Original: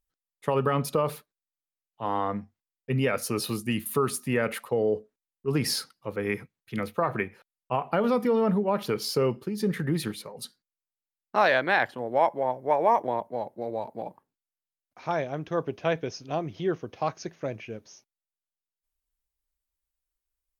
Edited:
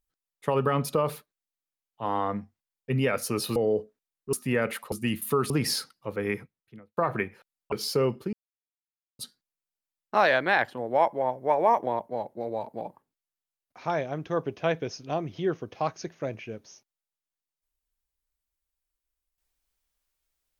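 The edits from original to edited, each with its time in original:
0:03.56–0:04.14: swap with 0:04.73–0:05.50
0:06.23–0:06.97: fade out and dull
0:07.72–0:08.93: remove
0:09.54–0:10.40: silence

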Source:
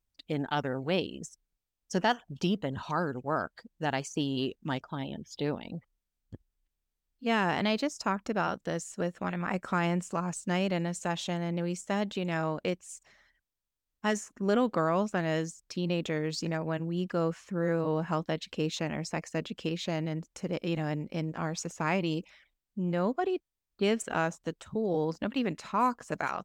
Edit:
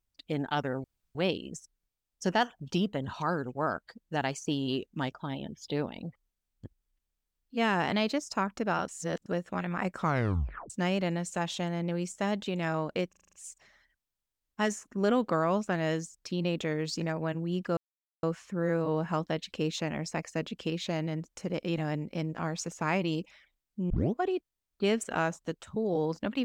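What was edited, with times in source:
0:00.84: splice in room tone 0.31 s
0:08.57–0:08.95: reverse
0:09.69: tape stop 0.70 s
0:12.78: stutter 0.04 s, 7 plays
0:17.22: splice in silence 0.46 s
0:22.89: tape start 0.25 s

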